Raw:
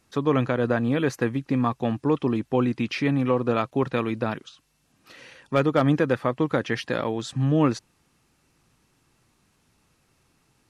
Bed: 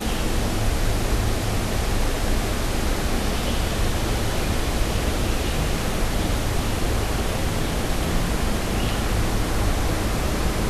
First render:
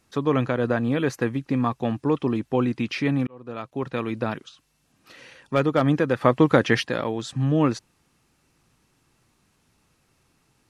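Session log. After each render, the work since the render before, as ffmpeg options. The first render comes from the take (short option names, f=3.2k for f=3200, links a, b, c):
-filter_complex "[0:a]asplit=4[a][b][c][d];[a]atrim=end=3.27,asetpts=PTS-STARTPTS,afade=t=out:st=3.266:d=0.004:c=hsin[e];[b]atrim=start=3.27:end=6.212,asetpts=PTS-STARTPTS,afade=t=in:d=0.95[f];[c]atrim=start=6.208:end=6.832,asetpts=PTS-STARTPTS,volume=6.5dB[g];[d]atrim=start=6.828[h];[e][f]concat=n=2:v=0:a=1[i];[i][g]acrossfade=d=0.004:c1=hsin:c2=hsin[j];[j][h]acrossfade=d=0.004:c1=hsin:c2=hsin"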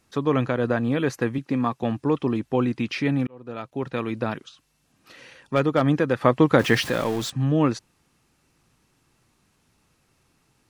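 -filter_complex "[0:a]asettb=1/sr,asplit=3[a][b][c];[a]atrim=end=1.384[d];[b]atrim=start=1.38:end=1.83,asetpts=PTS-STARTPTS,afade=t=in:d=0.004:c=qsin,afade=t=out:st=0.446:d=0.004:c=qsin,highpass=130[e];[c]atrim=start=1.826[f];[d][e]acrossfade=d=0.004:c1=hsin:c2=qsin[g];[g][f]acrossfade=d=0.004:c1=qsin:c2=hsin,asettb=1/sr,asplit=3[h][i][j];[h]atrim=end=3.024[k];[i]atrim=start=3.02:end=3.93,asetpts=PTS-STARTPTS,afade=t=in:d=0.004:c=qsin,afade=t=out:st=0.906:d=0.004:c=qsin,bandreject=f=1.1k:w=11[l];[j]atrim=start=3.926[m];[k][l]acrossfade=d=0.004:c1=hsin:c2=qsin[n];[n][m]acrossfade=d=0.004:c1=qsin:c2=hsin,asettb=1/sr,asplit=3[o][p][q];[o]atrim=end=6.594[r];[p]atrim=start=6.59:end=7.3,asetpts=PTS-STARTPTS,afade=t=in:d=0.004:c=qsin,afade=t=out:st=0.706:d=0.004:c=qsin,aeval=exprs='val(0)+0.5*0.0335*sgn(val(0))':c=same[s];[q]atrim=start=7.296[t];[r][s]acrossfade=d=0.004:c1=hsin:c2=qsin[u];[u][t]acrossfade=d=0.004:c1=qsin:c2=hsin"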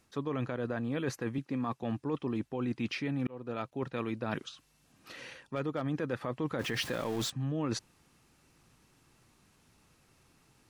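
-af "alimiter=limit=-14dB:level=0:latency=1:release=38,areverse,acompressor=threshold=-31dB:ratio=6,areverse"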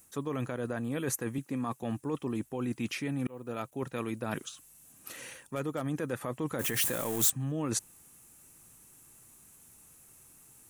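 -af "aexciter=amount=10:drive=2.9:freq=6.8k"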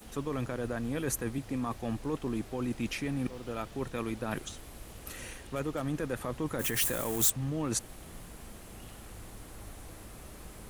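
-filter_complex "[1:a]volume=-25dB[a];[0:a][a]amix=inputs=2:normalize=0"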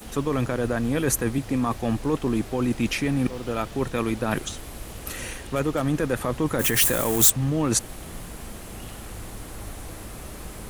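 -af "volume=9.5dB"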